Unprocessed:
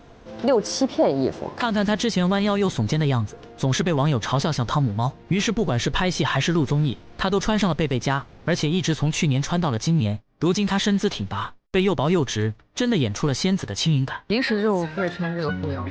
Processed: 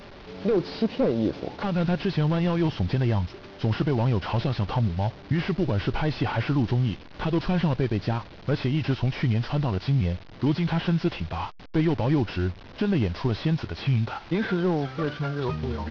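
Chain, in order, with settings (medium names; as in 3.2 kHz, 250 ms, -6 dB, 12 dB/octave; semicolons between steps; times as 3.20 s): one-bit delta coder 32 kbps, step -35.5 dBFS; band-stop 1.5 kHz, Q 26; pitch shift -3 st; trim -2.5 dB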